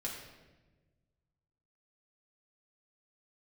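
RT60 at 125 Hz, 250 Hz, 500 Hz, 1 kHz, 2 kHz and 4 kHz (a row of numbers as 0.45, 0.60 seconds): 2.2, 1.7, 1.4, 1.0, 1.0, 0.90 seconds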